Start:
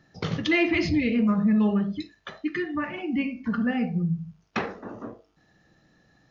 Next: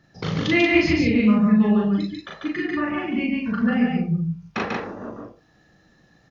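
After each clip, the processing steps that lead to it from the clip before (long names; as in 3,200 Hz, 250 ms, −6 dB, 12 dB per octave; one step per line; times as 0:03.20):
loudspeakers that aren't time-aligned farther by 13 metres −1 dB, 49 metres −2 dB, 63 metres −3 dB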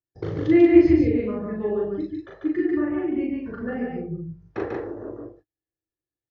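noise gate −50 dBFS, range −37 dB
drawn EQ curve 110 Hz 0 dB, 210 Hz −19 dB, 330 Hz +5 dB, 690 Hz −7 dB, 1,200 Hz −13 dB, 1,800 Hz −10 dB, 2,500 Hz −20 dB
level +2 dB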